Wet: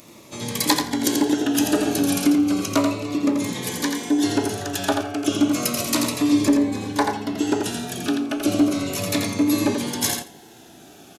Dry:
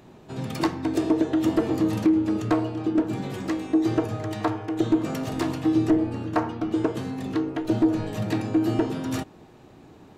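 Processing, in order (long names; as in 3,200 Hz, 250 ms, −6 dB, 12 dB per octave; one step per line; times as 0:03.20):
tape wow and flutter 27 cents
RIAA equalisation recording
speed change −9%
repeating echo 85 ms, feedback 15%, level −5.5 dB
phaser whose notches keep moving one way falling 0.33 Hz
level +7 dB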